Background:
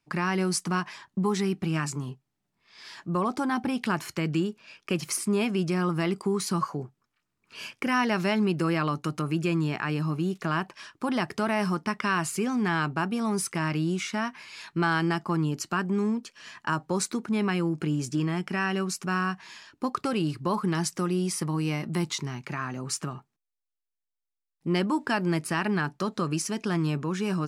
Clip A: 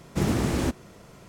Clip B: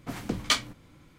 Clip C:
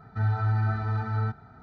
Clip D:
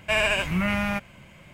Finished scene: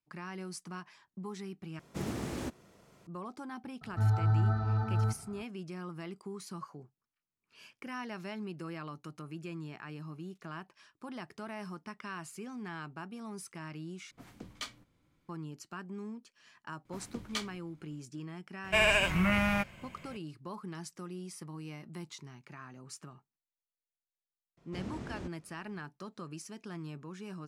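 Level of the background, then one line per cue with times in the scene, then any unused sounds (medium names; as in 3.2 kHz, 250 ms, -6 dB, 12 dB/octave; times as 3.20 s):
background -16 dB
1.79 s: replace with A -11 dB + bass shelf 77 Hz -9 dB
3.81 s: add C -2 dB + peaking EQ 2.2 kHz -13 dB 0.83 oct
14.11 s: replace with B -17 dB
16.85 s: add B -13 dB
18.64 s: add D -3 dB
24.57 s: add A -17.5 dB + distance through air 78 m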